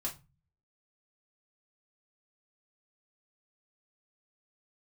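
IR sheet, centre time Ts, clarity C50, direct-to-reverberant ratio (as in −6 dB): 17 ms, 13.5 dB, −4.0 dB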